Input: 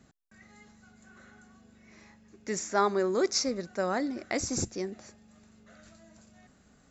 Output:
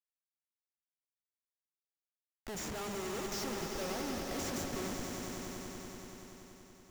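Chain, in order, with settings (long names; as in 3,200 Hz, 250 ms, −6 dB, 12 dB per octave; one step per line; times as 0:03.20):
comparator with hysteresis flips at −39 dBFS
echo that builds up and dies away 95 ms, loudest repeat 5, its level −8.5 dB
level −6.5 dB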